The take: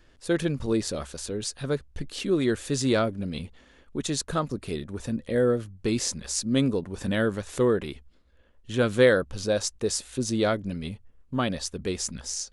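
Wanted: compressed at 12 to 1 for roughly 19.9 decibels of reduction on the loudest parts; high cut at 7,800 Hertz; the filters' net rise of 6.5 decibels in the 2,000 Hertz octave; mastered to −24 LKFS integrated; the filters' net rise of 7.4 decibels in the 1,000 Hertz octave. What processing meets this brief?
low-pass filter 7,800 Hz
parametric band 1,000 Hz +8.5 dB
parametric band 2,000 Hz +5 dB
downward compressor 12 to 1, threshold −31 dBFS
level +12.5 dB

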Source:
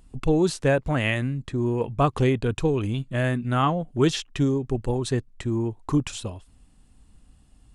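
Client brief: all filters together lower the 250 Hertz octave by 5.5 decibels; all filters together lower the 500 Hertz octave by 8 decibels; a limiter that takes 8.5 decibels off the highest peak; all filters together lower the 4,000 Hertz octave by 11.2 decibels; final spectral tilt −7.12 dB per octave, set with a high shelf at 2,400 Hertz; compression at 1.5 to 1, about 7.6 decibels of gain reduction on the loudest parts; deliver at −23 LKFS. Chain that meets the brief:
parametric band 250 Hz −4.5 dB
parametric band 500 Hz −8.5 dB
high-shelf EQ 2,400 Hz −8 dB
parametric band 4,000 Hz −8 dB
downward compressor 1.5 to 1, threshold −41 dBFS
level +16.5 dB
brickwall limiter −13 dBFS

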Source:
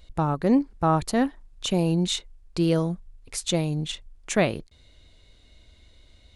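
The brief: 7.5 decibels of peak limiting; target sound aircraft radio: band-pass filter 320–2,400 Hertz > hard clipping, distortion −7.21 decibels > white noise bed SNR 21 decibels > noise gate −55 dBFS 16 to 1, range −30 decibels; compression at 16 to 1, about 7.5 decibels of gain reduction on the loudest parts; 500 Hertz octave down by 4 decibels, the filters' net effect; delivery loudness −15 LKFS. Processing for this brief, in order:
parametric band 500 Hz −4 dB
downward compressor 16 to 1, threshold −24 dBFS
brickwall limiter −22 dBFS
band-pass filter 320–2,400 Hz
hard clipping −35 dBFS
white noise bed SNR 21 dB
noise gate −55 dBFS 16 to 1, range −30 dB
level +27 dB

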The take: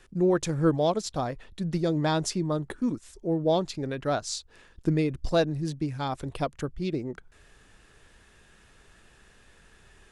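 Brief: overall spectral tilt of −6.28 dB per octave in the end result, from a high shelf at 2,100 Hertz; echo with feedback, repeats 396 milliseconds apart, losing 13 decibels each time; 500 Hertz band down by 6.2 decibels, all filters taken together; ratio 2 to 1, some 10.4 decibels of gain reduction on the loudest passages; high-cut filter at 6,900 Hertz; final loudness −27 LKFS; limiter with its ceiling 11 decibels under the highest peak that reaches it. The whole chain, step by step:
low-pass filter 6,900 Hz
parametric band 500 Hz −8 dB
high-shelf EQ 2,100 Hz −7 dB
downward compressor 2 to 1, threshold −41 dBFS
brickwall limiter −34.5 dBFS
repeating echo 396 ms, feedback 22%, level −13 dB
level +17 dB

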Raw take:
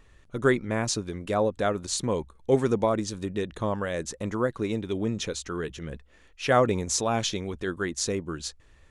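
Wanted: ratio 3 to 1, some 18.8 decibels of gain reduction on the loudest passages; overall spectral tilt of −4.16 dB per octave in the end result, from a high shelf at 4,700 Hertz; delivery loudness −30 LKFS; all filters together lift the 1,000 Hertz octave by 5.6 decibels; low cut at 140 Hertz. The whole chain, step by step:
high-pass filter 140 Hz
parametric band 1,000 Hz +8 dB
high-shelf EQ 4,700 Hz −8.5 dB
downward compressor 3 to 1, threshold −39 dBFS
level +10 dB

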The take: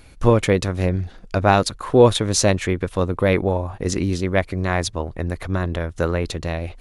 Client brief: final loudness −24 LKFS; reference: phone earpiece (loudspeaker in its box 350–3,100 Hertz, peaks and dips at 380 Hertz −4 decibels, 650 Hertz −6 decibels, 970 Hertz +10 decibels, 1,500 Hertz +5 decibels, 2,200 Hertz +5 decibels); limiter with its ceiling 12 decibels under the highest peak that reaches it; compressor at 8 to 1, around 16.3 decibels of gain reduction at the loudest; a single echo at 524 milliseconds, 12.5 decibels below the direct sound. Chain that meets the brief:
downward compressor 8 to 1, threshold −24 dBFS
brickwall limiter −22.5 dBFS
loudspeaker in its box 350–3,100 Hz, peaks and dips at 380 Hz −4 dB, 650 Hz −6 dB, 970 Hz +10 dB, 1,500 Hz +5 dB, 2,200 Hz +5 dB
single-tap delay 524 ms −12.5 dB
level +12 dB

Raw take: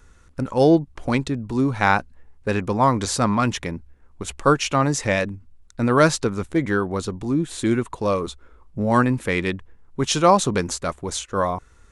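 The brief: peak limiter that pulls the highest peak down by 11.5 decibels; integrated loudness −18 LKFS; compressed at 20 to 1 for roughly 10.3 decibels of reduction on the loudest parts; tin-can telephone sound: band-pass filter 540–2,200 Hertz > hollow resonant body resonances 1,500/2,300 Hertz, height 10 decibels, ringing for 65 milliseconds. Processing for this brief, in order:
downward compressor 20 to 1, threshold −20 dBFS
brickwall limiter −19.5 dBFS
band-pass filter 540–2,200 Hz
hollow resonant body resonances 1,500/2,300 Hz, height 10 dB, ringing for 65 ms
level +17.5 dB

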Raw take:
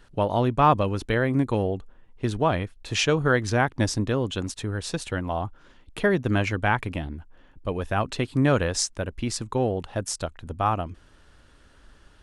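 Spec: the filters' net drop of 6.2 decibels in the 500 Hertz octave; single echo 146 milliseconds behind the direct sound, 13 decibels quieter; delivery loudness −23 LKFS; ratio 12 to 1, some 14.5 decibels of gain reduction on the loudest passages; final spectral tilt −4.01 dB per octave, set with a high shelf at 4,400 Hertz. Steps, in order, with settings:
parametric band 500 Hz −8 dB
high-shelf EQ 4,400 Hz +8.5 dB
downward compressor 12 to 1, threshold −30 dBFS
single-tap delay 146 ms −13 dB
level +12.5 dB

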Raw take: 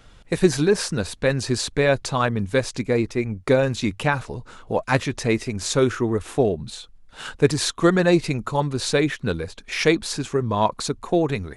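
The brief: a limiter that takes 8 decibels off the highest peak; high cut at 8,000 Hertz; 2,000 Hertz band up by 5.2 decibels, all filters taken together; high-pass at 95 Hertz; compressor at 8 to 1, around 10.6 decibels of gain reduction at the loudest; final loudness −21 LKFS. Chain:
high-pass filter 95 Hz
low-pass filter 8,000 Hz
parametric band 2,000 Hz +6.5 dB
downward compressor 8 to 1, threshold −22 dBFS
level +8.5 dB
brickwall limiter −8.5 dBFS

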